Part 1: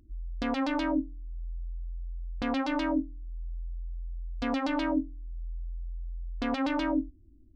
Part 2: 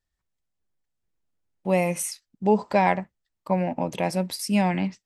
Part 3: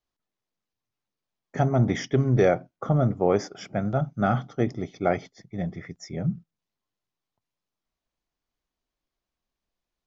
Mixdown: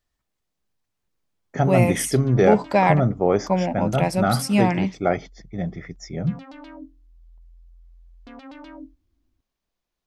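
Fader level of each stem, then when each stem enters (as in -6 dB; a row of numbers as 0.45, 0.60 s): -12.5, +2.5, +2.5 dB; 1.85, 0.00, 0.00 s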